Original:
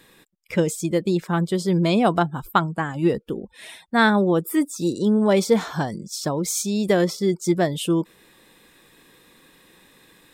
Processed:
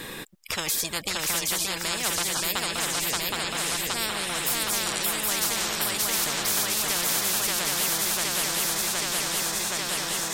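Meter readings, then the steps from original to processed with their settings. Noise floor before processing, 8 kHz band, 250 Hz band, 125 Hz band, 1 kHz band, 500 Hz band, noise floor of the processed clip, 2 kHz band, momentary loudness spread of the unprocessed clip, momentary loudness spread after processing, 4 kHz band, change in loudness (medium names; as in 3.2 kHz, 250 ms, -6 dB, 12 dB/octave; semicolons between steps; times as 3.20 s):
-56 dBFS, +9.0 dB, -16.5 dB, -14.5 dB, -5.5 dB, -13.0 dB, -37 dBFS, 0.0 dB, 10 LU, 4 LU, +8.5 dB, -2.5 dB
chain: shuffle delay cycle 769 ms, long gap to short 3:1, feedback 61%, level -4 dB; spectrum-flattening compressor 10:1; trim -7.5 dB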